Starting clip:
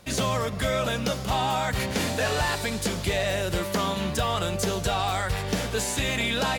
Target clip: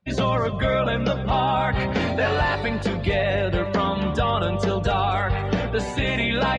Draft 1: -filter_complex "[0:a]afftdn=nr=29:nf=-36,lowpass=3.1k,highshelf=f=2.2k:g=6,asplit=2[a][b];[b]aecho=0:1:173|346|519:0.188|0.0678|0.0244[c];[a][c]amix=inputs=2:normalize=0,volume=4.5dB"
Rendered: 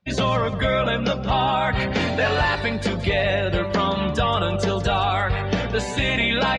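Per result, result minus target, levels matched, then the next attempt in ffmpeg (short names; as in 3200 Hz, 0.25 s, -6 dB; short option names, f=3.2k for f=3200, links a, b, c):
echo 0.102 s early; 4000 Hz band +3.0 dB
-filter_complex "[0:a]afftdn=nr=29:nf=-36,lowpass=3.1k,highshelf=f=2.2k:g=6,asplit=2[a][b];[b]aecho=0:1:275|550|825:0.188|0.0678|0.0244[c];[a][c]amix=inputs=2:normalize=0,volume=4.5dB"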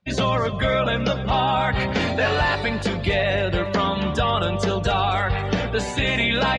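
4000 Hz band +3.0 dB
-filter_complex "[0:a]afftdn=nr=29:nf=-36,lowpass=3.1k,asplit=2[a][b];[b]aecho=0:1:275|550|825:0.188|0.0678|0.0244[c];[a][c]amix=inputs=2:normalize=0,volume=4.5dB"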